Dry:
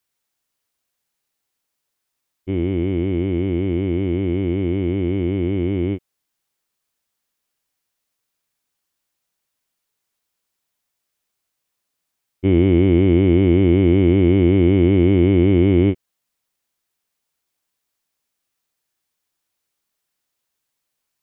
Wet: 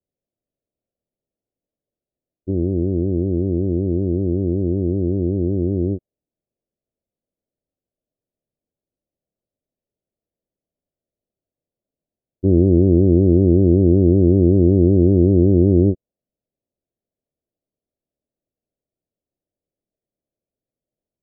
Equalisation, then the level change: Chebyshev low-pass 620 Hz, order 4; dynamic EQ 290 Hz, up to -4 dB, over -28 dBFS, Q 3.3; +2.5 dB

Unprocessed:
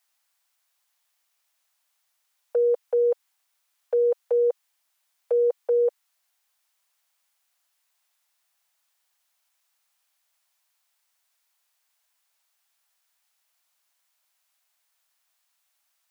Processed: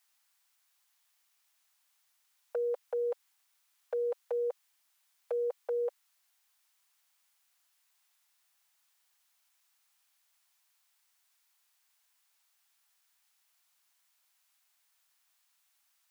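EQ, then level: bell 460 Hz -11.5 dB 0.77 oct; 0.0 dB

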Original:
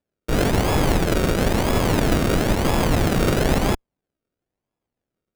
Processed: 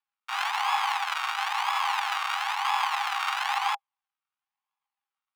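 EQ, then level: rippled Chebyshev high-pass 780 Hz, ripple 6 dB; LPF 1700 Hz 6 dB/oct; +6.5 dB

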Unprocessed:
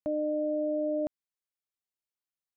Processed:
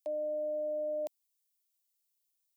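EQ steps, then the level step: HPF 270 Hz; tilt +4 dB/oct; fixed phaser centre 570 Hz, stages 4; 0.0 dB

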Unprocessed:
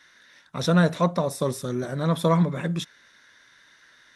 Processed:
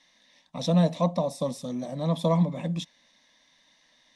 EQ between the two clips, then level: air absorption 58 m; fixed phaser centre 390 Hz, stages 6; 0.0 dB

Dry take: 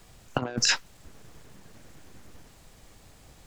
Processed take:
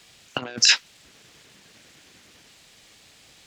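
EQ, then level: weighting filter D; -2.0 dB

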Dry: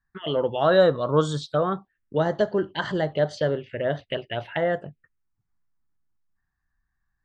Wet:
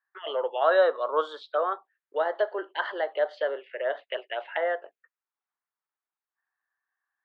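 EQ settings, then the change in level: Bessel high-pass 740 Hz, order 8; air absorption 420 m; +3.5 dB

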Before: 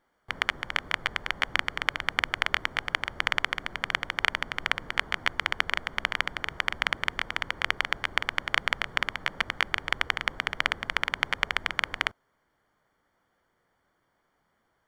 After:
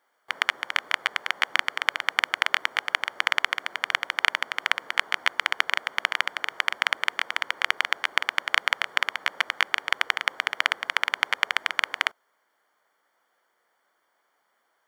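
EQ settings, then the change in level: HPF 520 Hz 12 dB/oct; high shelf 8100 Hz +5 dB; +3.0 dB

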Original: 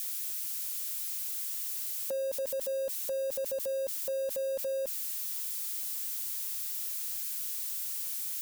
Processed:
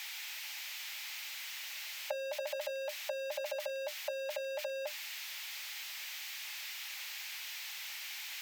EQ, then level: rippled Chebyshev high-pass 580 Hz, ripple 9 dB; air absorption 200 m; bell 14000 Hz +13 dB 0.72 oct; +16.0 dB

